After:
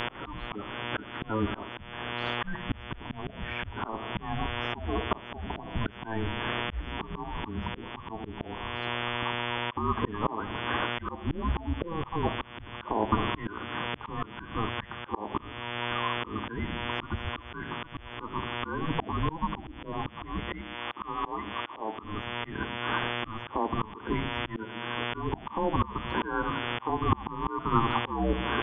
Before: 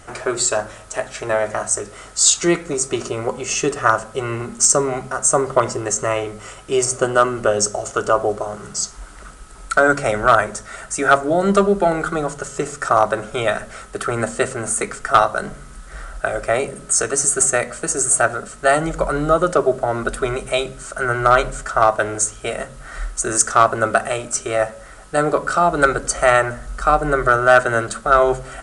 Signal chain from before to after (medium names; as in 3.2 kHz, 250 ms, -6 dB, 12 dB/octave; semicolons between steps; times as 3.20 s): coarse spectral quantiser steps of 30 dB; on a send: thinning echo 82 ms, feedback 52%, high-pass 350 Hz, level -22 dB; on the sum: mistuned SSB -330 Hz 300–2200 Hz; mains buzz 120 Hz, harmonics 29, -37 dBFS -1 dB/octave; compression 8:1, threshold -18 dBFS, peak gain reduction 11.5 dB; slow attack 484 ms; 20.61–22.03 s: bass shelf 180 Hz -12 dB; trim +4.5 dB